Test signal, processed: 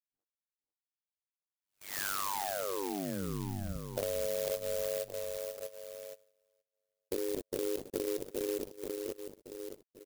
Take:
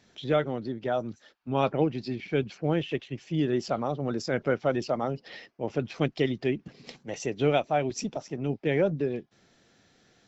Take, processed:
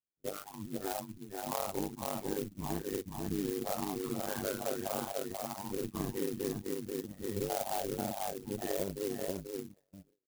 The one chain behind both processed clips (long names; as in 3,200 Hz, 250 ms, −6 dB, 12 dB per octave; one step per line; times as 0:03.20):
every bin's largest magnitude spread in time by 120 ms
low-pass that shuts in the quiet parts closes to 560 Hz, open at −22.5 dBFS
single-tap delay 1,109 ms −14 dB
noise reduction from a noise print of the clip's start 25 dB
Butterworth low-pass 1,800 Hz 48 dB per octave
single-tap delay 487 ms −6.5 dB
reverb reduction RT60 0.53 s
noise gate with hold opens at −46 dBFS
downward compressor 4 to 1, threshold −29 dBFS
amplitude modulation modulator 98 Hz, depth 95%
converter with an unsteady clock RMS 0.11 ms